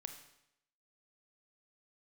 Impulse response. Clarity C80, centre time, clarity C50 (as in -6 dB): 10.5 dB, 17 ms, 8.0 dB